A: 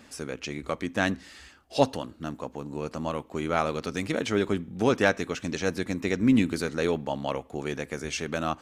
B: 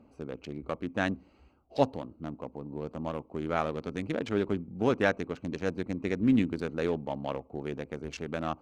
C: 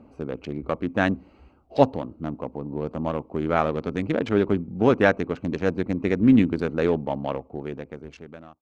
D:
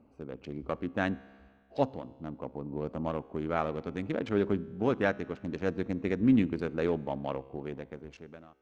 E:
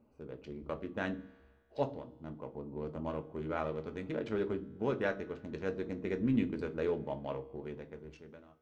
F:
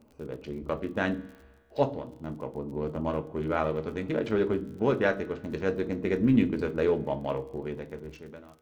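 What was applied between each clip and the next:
local Wiener filter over 25 samples; treble shelf 5.8 kHz -10.5 dB; trim -3 dB
fade out at the end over 1.62 s; treble shelf 4.9 kHz -12 dB; trim +8 dB
level rider gain up to 5.5 dB; feedback comb 67 Hz, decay 1.8 s, harmonics all, mix 40%; trim -7 dB
reverberation, pre-delay 5 ms, DRR 6.5 dB; trim -6.5 dB
crackle 45 per s -52 dBFS; trim +8 dB

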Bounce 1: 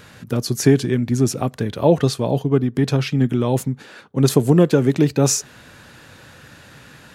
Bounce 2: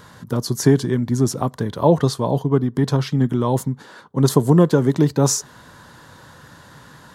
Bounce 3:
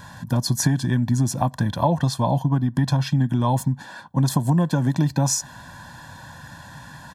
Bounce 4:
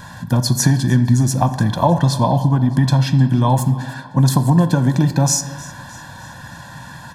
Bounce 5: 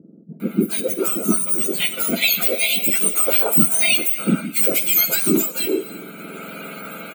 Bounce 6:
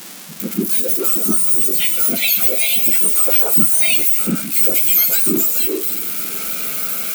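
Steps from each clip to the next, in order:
graphic EQ with 31 bands 160 Hz +3 dB, 1 kHz +10 dB, 2.5 kHz -12 dB; trim -1 dB
comb 1.2 ms, depth 93%; compression, threshold -16 dBFS, peak gain reduction 9 dB
thinning echo 307 ms, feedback 52%, level -20 dB; on a send at -9.5 dB: reverberation RT60 1.4 s, pre-delay 4 ms; on the sum: trim +5 dB
spectrum inverted on a logarithmic axis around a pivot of 1.5 kHz; level rider gain up to 7 dB; bands offset in time lows, highs 400 ms, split 370 Hz; trim -1 dB
zero-crossing glitches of -13.5 dBFS; trim -2 dB

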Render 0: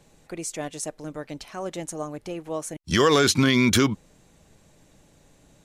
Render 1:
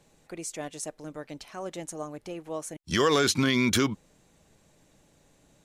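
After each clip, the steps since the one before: bass shelf 140 Hz -4 dB; trim -4 dB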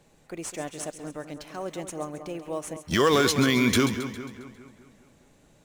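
in parallel at -10 dB: sample-rate reducer 9.1 kHz, jitter 0%; on the sum: two-band feedback delay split 2.3 kHz, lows 205 ms, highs 135 ms, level -10.5 dB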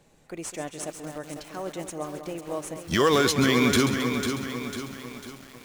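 bit-crushed delay 498 ms, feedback 55%, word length 7-bit, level -7 dB

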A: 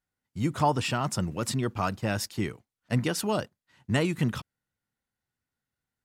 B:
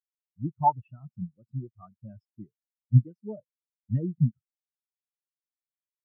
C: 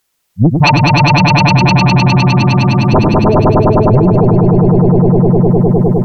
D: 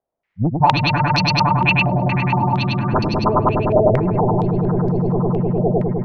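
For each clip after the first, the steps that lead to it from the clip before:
spectral contrast expander 4:1; trim +4 dB
sine folder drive 15 dB, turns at -7.5 dBFS; echo with a slow build-up 102 ms, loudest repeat 5, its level -3.5 dB; loudness maximiser +12.5 dB; trim -1 dB
step-sequenced low-pass 4.3 Hz 650–4900 Hz; trim -10 dB

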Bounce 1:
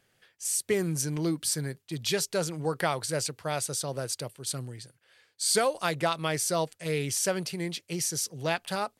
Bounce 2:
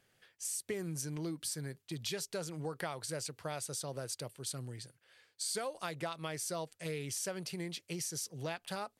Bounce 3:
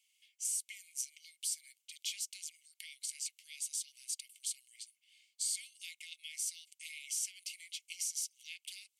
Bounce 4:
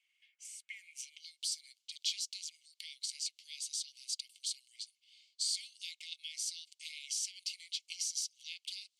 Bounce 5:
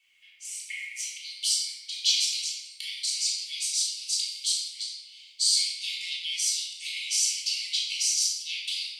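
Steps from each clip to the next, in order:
compression 3:1, threshold -35 dBFS, peak gain reduction 11 dB; trim -3 dB
rippled Chebyshev high-pass 2.1 kHz, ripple 6 dB; trim +4 dB
band-pass sweep 1.6 kHz -> 4.3 kHz, 0.72–1.27 s; trim +8.5 dB
simulated room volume 740 m³, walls mixed, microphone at 3.5 m; trim +6.5 dB

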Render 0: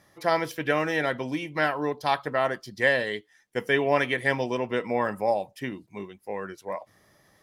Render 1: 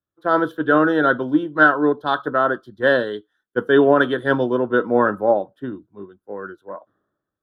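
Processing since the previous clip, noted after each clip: FFT filter 170 Hz 0 dB, 310 Hz +9 dB, 870 Hz -2 dB, 1.5 kHz +12 dB, 2.2 kHz -27 dB, 3.5 kHz +1 dB, 5.1 kHz -21 dB, 11 kHz -14 dB; loudness maximiser +9.5 dB; three bands expanded up and down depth 100%; trim -4.5 dB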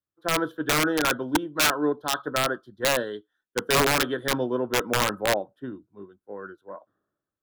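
integer overflow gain 8 dB; trim -6.5 dB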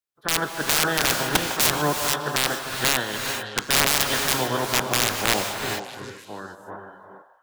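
spectral peaks clipped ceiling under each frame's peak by 20 dB; repeats whose band climbs or falls 152 ms, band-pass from 800 Hz, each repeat 0.7 oct, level -8 dB; gated-style reverb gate 470 ms rising, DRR 5 dB; trim +1 dB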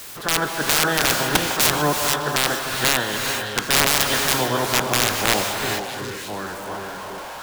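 jump at every zero crossing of -30.5 dBFS; trim +1.5 dB

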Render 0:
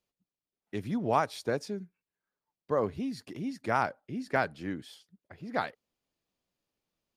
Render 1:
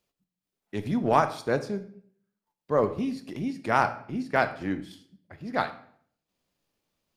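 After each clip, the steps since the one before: transient shaper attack -5 dB, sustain -9 dB; on a send at -9 dB: reverberation RT60 0.60 s, pre-delay 3 ms; on the sum: trim +6.5 dB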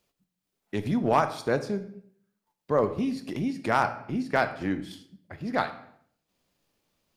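in parallel at +2 dB: compression, threshold -33 dBFS, peak gain reduction 17 dB; on the sum: hard clipper -8.5 dBFS, distortion -26 dB; trim -2.5 dB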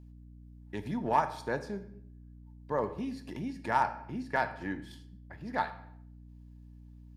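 small resonant body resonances 910/1700 Hz, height 14 dB, ringing for 50 ms; hum 60 Hz, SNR 15 dB; trim -8.5 dB

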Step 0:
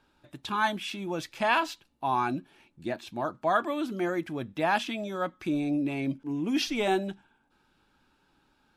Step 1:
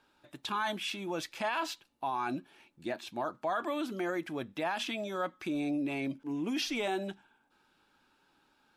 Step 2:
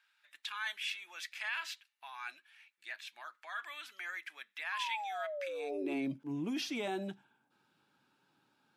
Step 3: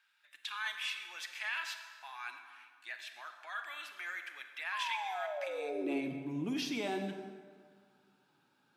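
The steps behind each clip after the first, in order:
peak limiter -23.5 dBFS, peak gain reduction 11 dB; bass shelf 180 Hz -12 dB
high-pass sweep 1.9 kHz -> 130 Hz, 5.42–6.16 s; painted sound fall, 4.72–5.94 s, 340–1100 Hz -35 dBFS; trim -5 dB
reverberation RT60 1.9 s, pre-delay 27 ms, DRR 6.5 dB

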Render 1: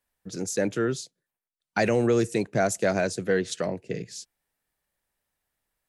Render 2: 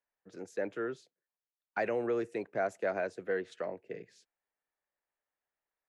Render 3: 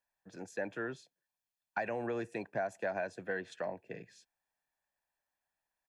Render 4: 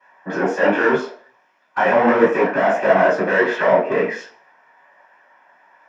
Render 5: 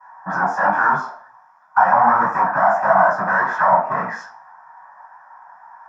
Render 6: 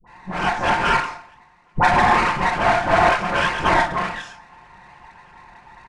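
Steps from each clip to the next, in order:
three-band isolator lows -15 dB, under 320 Hz, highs -20 dB, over 2.6 kHz; trim -7 dB
comb 1.2 ms, depth 51%; compression 4:1, threshold -33 dBFS, peak gain reduction 7 dB; trim +1 dB
overdrive pedal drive 35 dB, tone 1.3 kHz, clips at -20 dBFS; reverberation RT60 0.45 s, pre-delay 3 ms, DRR -14.5 dB; detune thickener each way 48 cents; trim +1 dB
FFT filter 150 Hz 0 dB, 440 Hz -25 dB, 790 Hz +7 dB, 1.3 kHz +7 dB, 2.7 kHz -23 dB, 5.4 kHz -7 dB; in parallel at +1 dB: compression, threshold -24 dBFS, peak gain reduction 14.5 dB; on the sum: trim -1.5 dB
comb filter that takes the minimum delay 5.7 ms; resampled via 22.05 kHz; phase dispersion highs, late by 66 ms, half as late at 880 Hz

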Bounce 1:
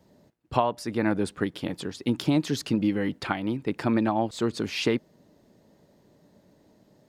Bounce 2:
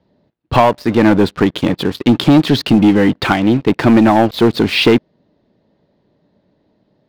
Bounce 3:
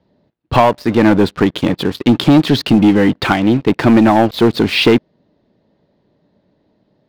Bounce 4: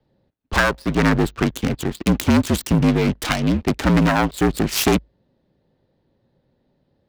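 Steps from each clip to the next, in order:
Chebyshev low-pass 4.1 kHz, order 3; waveshaping leveller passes 3; trim +6 dB
no audible change
self-modulated delay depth 0.38 ms; frequency shift -53 Hz; trim -6 dB

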